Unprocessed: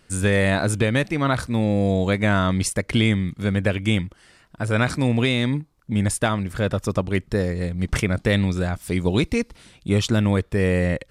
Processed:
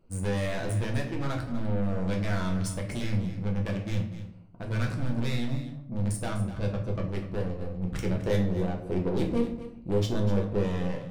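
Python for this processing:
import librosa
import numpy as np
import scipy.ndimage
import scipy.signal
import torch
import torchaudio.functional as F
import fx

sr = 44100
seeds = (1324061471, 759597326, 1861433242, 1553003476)

y = fx.wiener(x, sr, points=25)
y = 10.0 ** (-23.5 / 20.0) * np.tanh(y / 10.0 ** (-23.5 / 20.0))
y = fx.peak_eq(y, sr, hz=410.0, db=7.0, octaves=1.6, at=(8.03, 10.63))
y = y + 10.0 ** (-13.0 / 20.0) * np.pad(y, (int(248 * sr / 1000.0), 0))[:len(y)]
y = fx.room_shoebox(y, sr, seeds[0], volume_m3=78.0, walls='mixed', distance_m=0.73)
y = F.gain(torch.from_numpy(y), -7.5).numpy()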